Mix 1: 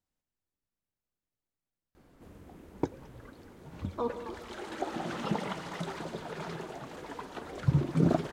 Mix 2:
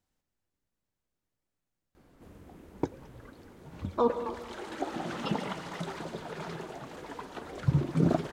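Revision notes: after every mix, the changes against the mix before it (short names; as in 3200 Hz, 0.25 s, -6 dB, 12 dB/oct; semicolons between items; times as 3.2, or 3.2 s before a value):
speech +7.0 dB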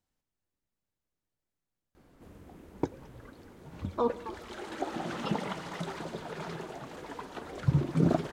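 speech: send -11.5 dB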